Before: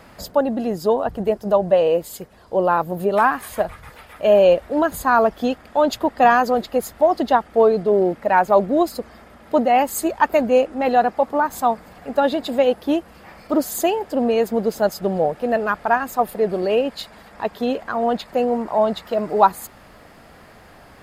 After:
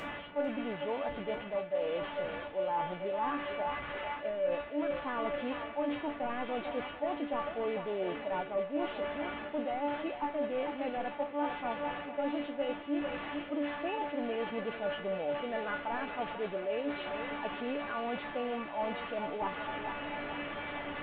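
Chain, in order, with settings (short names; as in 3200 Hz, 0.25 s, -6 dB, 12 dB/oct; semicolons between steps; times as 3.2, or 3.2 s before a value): delta modulation 16 kbps, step -23 dBFS; resonator 290 Hz, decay 0.36 s, harmonics all, mix 90%; thinning echo 0.448 s, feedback 63%, high-pass 340 Hz, level -11 dB; reverse; compressor 4:1, threshold -35 dBFS, peak gain reduction 14.5 dB; reverse; low shelf 86 Hz -8.5 dB; gain +3.5 dB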